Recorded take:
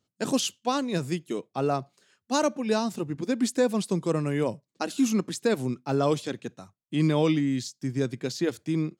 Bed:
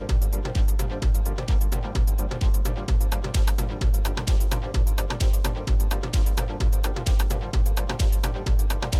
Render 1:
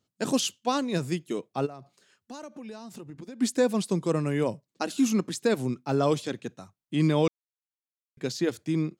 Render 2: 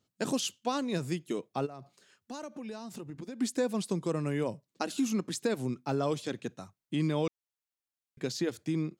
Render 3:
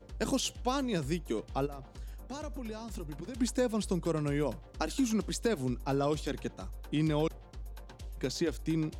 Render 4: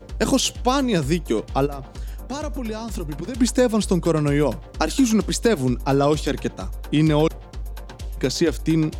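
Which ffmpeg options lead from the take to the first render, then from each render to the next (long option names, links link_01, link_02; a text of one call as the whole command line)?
ffmpeg -i in.wav -filter_complex "[0:a]asplit=3[link_01][link_02][link_03];[link_01]afade=type=out:start_time=1.65:duration=0.02[link_04];[link_02]acompressor=threshold=-38dB:ratio=8:attack=3.2:release=140:knee=1:detection=peak,afade=type=in:start_time=1.65:duration=0.02,afade=type=out:start_time=3.4:duration=0.02[link_05];[link_03]afade=type=in:start_time=3.4:duration=0.02[link_06];[link_04][link_05][link_06]amix=inputs=3:normalize=0,asplit=3[link_07][link_08][link_09];[link_07]atrim=end=7.28,asetpts=PTS-STARTPTS,afade=type=out:start_time=7.276:duration=0.004:curve=hsin[link_10];[link_08]atrim=start=7.28:end=8.17,asetpts=PTS-STARTPTS,volume=0[link_11];[link_09]atrim=start=8.17,asetpts=PTS-STARTPTS,afade=type=in:duration=0.004:curve=hsin[link_12];[link_10][link_11][link_12]concat=n=3:v=0:a=1" out.wav
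ffmpeg -i in.wav -af "acompressor=threshold=-31dB:ratio=2" out.wav
ffmpeg -i in.wav -i bed.wav -filter_complex "[1:a]volume=-23.5dB[link_01];[0:a][link_01]amix=inputs=2:normalize=0" out.wav
ffmpeg -i in.wav -af "volume=12dB" out.wav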